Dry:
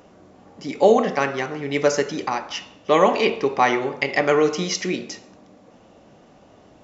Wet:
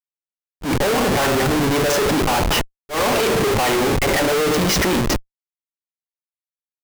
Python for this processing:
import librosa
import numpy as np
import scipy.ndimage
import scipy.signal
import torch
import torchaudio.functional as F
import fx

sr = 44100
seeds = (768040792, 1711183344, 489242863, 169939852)

y = fx.noise_reduce_blind(x, sr, reduce_db=7)
y = fx.schmitt(y, sr, flips_db=-32.0)
y = fx.auto_swell(y, sr, attack_ms=114.0)
y = y * 10.0 ** (5.0 / 20.0)